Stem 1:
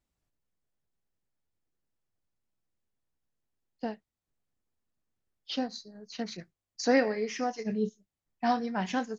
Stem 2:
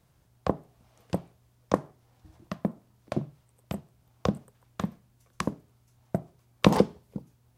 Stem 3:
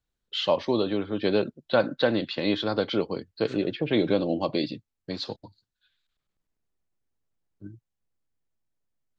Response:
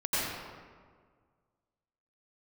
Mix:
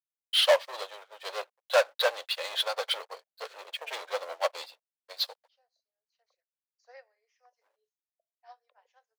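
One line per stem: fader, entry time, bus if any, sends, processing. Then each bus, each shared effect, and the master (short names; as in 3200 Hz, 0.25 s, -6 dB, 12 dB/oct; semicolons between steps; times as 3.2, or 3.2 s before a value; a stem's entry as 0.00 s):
-5.5 dB, 0.00 s, no send, low shelf 480 Hz +4 dB
-1.0 dB, 2.05 s, no send, spectral gate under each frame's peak -15 dB strong; auto duck -14 dB, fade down 1.85 s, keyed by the first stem
-5.0 dB, 0.00 s, no send, sample leveller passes 5; sample gate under -36.5 dBFS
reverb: off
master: steep high-pass 530 Hz 48 dB/oct; upward expander 2.5:1, over -38 dBFS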